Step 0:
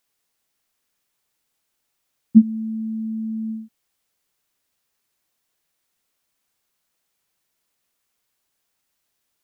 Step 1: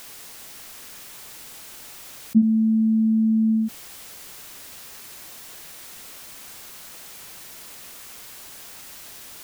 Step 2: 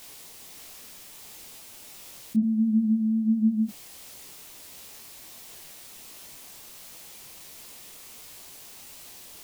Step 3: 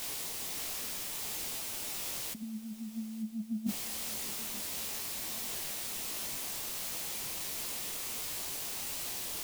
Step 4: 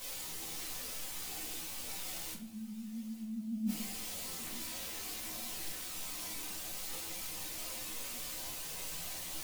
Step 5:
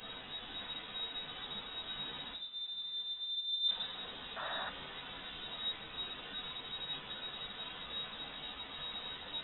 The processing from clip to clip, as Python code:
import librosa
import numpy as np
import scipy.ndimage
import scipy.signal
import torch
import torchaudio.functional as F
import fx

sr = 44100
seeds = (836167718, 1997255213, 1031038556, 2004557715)

y1 = fx.env_flatten(x, sr, amount_pct=70)
y1 = y1 * 10.0 ** (-6.5 / 20.0)
y2 = fx.peak_eq(y1, sr, hz=1500.0, db=-6.0, octaves=0.76)
y2 = fx.detune_double(y2, sr, cents=50)
y3 = fx.over_compress(y2, sr, threshold_db=-32.0, ratio=-0.5)
y3 = fx.echo_feedback(y3, sr, ms=888, feedback_pct=54, wet_db=-18)
y4 = fx.chorus_voices(y3, sr, voices=4, hz=0.27, base_ms=11, depth_ms=1.8, mix_pct=55)
y4 = fx.room_shoebox(y4, sr, seeds[0], volume_m3=570.0, walls='furnished', distance_m=2.0)
y4 = y4 * 10.0 ** (-2.5 / 20.0)
y5 = fx.freq_invert(y4, sr, carrier_hz=3800)
y5 = fx.spec_paint(y5, sr, seeds[1], shape='noise', start_s=4.36, length_s=0.34, low_hz=540.0, high_hz=1900.0, level_db=-43.0)
y5 = y5 * 10.0 ** (1.0 / 20.0)